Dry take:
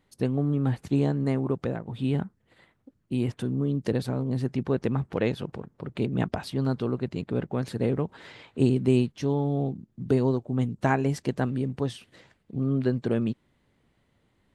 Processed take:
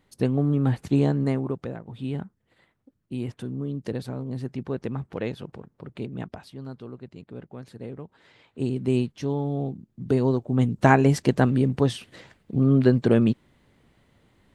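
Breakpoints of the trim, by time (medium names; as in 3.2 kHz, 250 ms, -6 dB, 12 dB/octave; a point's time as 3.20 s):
1.20 s +3 dB
1.66 s -4 dB
5.86 s -4 dB
6.58 s -11.5 dB
8.20 s -11.5 dB
8.96 s -1 dB
9.93 s -1 dB
10.88 s +7 dB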